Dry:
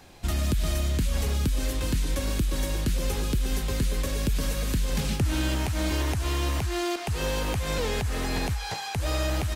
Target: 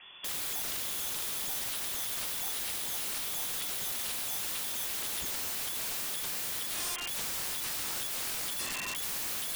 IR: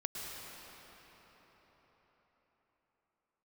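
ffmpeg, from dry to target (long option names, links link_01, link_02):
-filter_complex "[0:a]equalizer=frequency=350:width_type=o:width=0.63:gain=-7.5,lowpass=frequency=3000:width_type=q:width=0.5098,lowpass=frequency=3000:width_type=q:width=0.6013,lowpass=frequency=3000:width_type=q:width=0.9,lowpass=frequency=3000:width_type=q:width=2.563,afreqshift=-3500,acrossover=split=210|1500[link_01][link_02][link_03];[link_01]acrusher=samples=38:mix=1:aa=0.000001[link_04];[link_04][link_02][link_03]amix=inputs=3:normalize=0,acontrast=43,aeval=exprs='(mod(18.8*val(0)+1,2)-1)/18.8':channel_layout=same,volume=-5dB"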